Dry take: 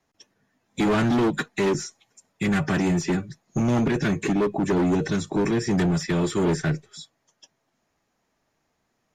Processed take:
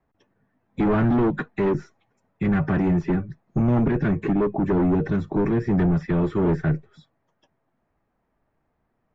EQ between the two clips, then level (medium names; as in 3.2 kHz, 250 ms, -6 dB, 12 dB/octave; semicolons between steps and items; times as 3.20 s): low-pass 1.6 kHz 12 dB/octave; bass shelf 84 Hz +11 dB; 0.0 dB